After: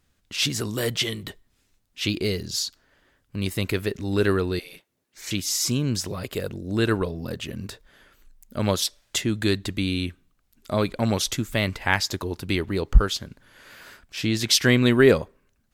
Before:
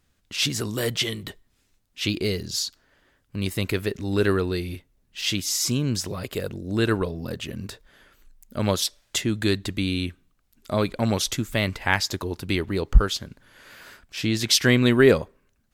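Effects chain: 4.59–5.31 spectral gate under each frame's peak -15 dB weak

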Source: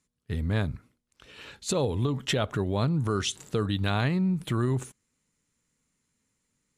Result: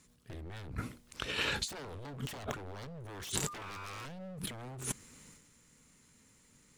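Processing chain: transient shaper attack +5 dB, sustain +9 dB; 3.47–4.05 whine 1200 Hz -26 dBFS; wavefolder -25.5 dBFS; negative-ratio compressor -43 dBFS, ratio -1; gain +1 dB

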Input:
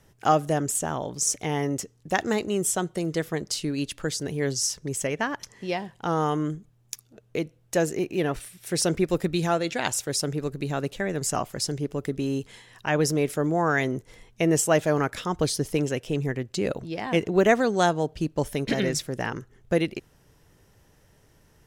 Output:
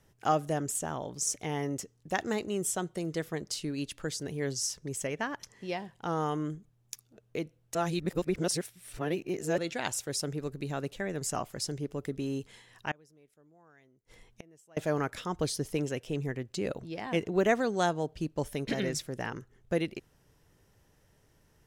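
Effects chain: 7.75–9.58 reverse; 12.91–14.77 flipped gate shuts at -22 dBFS, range -31 dB; gain -6.5 dB

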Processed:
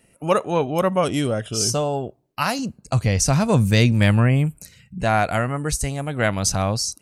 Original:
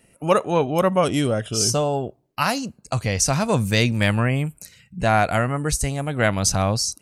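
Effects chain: 2.59–4.98 low shelf 310 Hz +7 dB; gain -1 dB

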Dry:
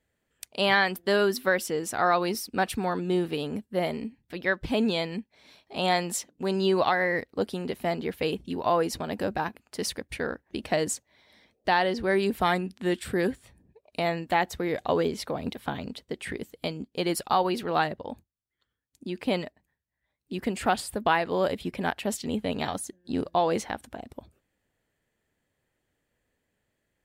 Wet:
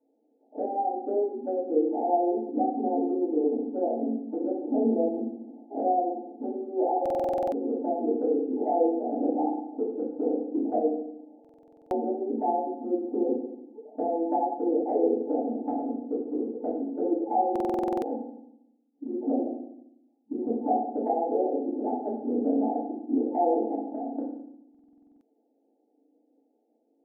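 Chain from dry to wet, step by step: FFT band-pass 220–880 Hz; compressor 2:1, threshold -42 dBFS, peak gain reduction 11.5 dB; FDN reverb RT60 0.78 s, low-frequency decay 1.4×, high-frequency decay 0.7×, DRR -10 dB; stuck buffer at 7.01/11.4/17.51/24.7, samples 2048, times 10

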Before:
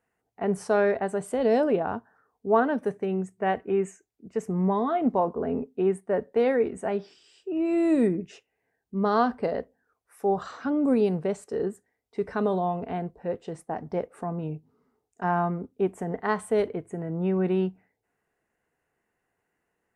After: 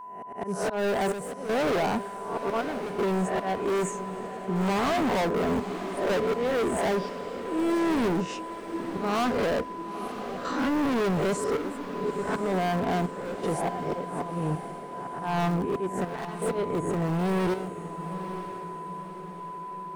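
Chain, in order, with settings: spectral swells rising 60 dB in 0.54 s; auto swell 0.355 s; in parallel at -8.5 dB: wrapped overs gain 26.5 dB; on the sum: whine 1000 Hz -44 dBFS; hard clip -29 dBFS, distortion -6 dB; chopper 0.67 Hz, depth 65%, duty 75%; on a send: diffused feedback echo 0.962 s, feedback 53%, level -10.5 dB; on the sum: gain +5 dB

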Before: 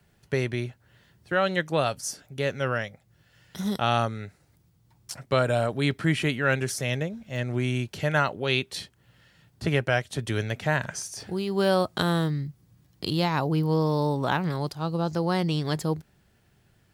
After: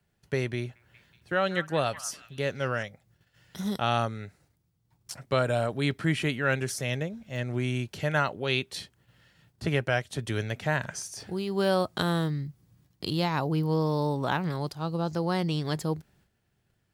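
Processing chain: gate -60 dBFS, range -8 dB; 0.57–2.83 delay with a stepping band-pass 0.186 s, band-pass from 1300 Hz, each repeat 0.7 oct, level -12 dB; gain -2.5 dB

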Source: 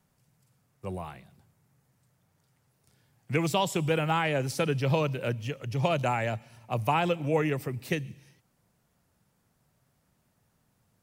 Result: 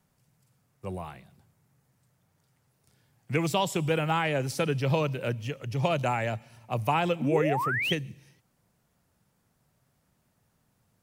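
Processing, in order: painted sound rise, 7.21–7.93, 220–3400 Hz -29 dBFS

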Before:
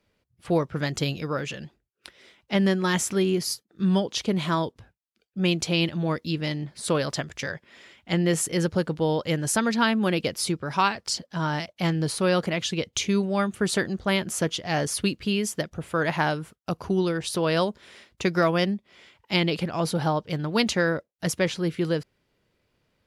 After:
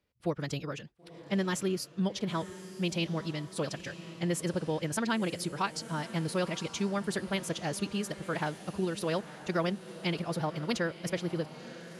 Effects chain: diffused feedback echo 1.897 s, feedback 48%, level -13 dB; time stretch by phase-locked vocoder 0.52×; gain -7 dB

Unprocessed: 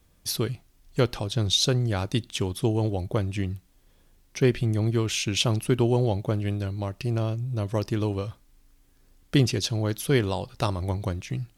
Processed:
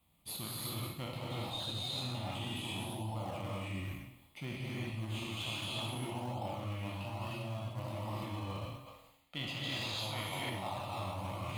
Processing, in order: spectral trails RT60 0.91 s; HPF 60 Hz; fixed phaser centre 1600 Hz, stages 6; non-linear reverb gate 0.37 s rising, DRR -7.5 dB; spectral gain 8.86–10.49, 420–7400 Hz +8 dB; in parallel at -10.5 dB: decimation with a swept rate 20×, swing 100% 1.2 Hz; on the sum: low shelf 140 Hz -10 dB; reverse; compressor 5:1, threshold -31 dBFS, peak gain reduction 18 dB; reverse; gain -7 dB

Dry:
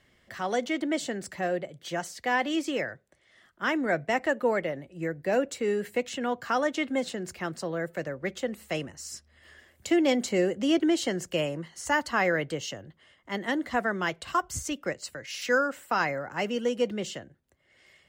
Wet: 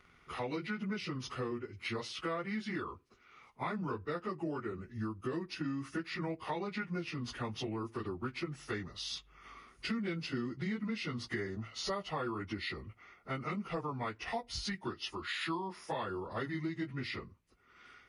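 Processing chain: pitch shift by moving bins -7 st; bell 2400 Hz +6.5 dB 1 oct; compressor 6:1, threshold -36 dBFS, peak gain reduction 15 dB; gain +1 dB

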